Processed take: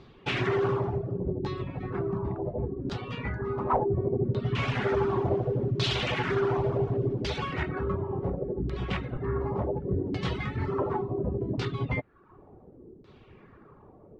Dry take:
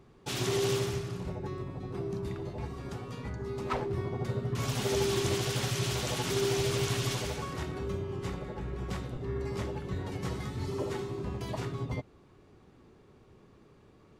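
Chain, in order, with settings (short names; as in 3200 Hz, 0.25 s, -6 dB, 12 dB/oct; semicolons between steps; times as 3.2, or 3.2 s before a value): in parallel at 0 dB: limiter -25.5 dBFS, peak gain reduction 8 dB; on the sum: reverb removal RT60 0.64 s; LFO low-pass saw down 0.69 Hz 290–4300 Hz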